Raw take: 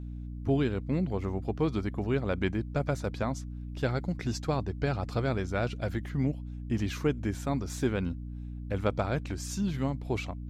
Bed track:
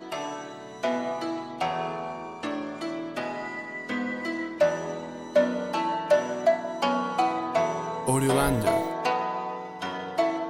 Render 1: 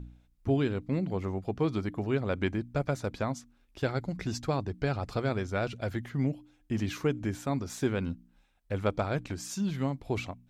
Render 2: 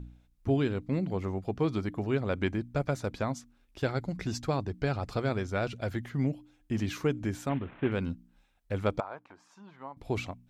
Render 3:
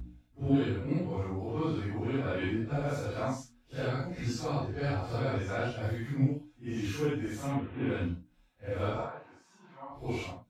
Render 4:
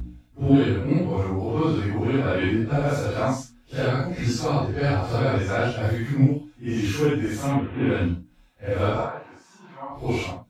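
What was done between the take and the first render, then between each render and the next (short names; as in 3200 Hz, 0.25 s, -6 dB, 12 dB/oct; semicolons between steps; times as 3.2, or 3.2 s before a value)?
de-hum 60 Hz, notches 5
7.49–7.92 CVSD 16 kbps; 9–9.97 band-pass 960 Hz, Q 2.7
phase scrambler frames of 0.2 s; notch comb 200 Hz
gain +9.5 dB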